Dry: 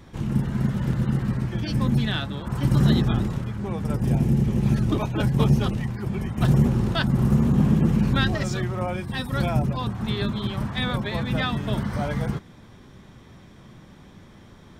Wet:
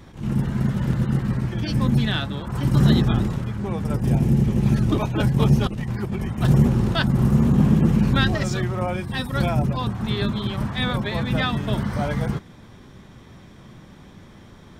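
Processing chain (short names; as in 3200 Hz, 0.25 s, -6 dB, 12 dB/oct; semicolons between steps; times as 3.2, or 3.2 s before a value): 5.67–6.26 negative-ratio compressor -28 dBFS, ratio -0.5; attack slew limiter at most 160 dB/s; gain +2.5 dB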